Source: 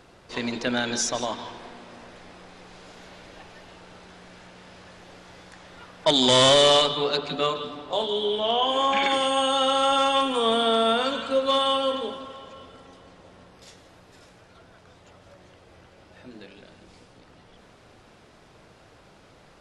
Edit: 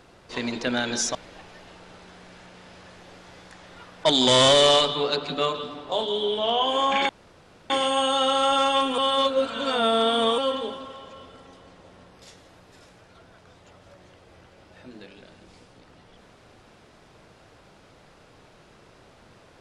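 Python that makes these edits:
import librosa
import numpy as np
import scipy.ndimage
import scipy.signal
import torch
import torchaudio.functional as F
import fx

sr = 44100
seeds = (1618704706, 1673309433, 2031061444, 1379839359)

y = fx.edit(x, sr, fx.cut(start_s=1.15, length_s=2.01),
    fx.insert_room_tone(at_s=9.1, length_s=0.61),
    fx.reverse_span(start_s=10.38, length_s=1.4), tone=tone)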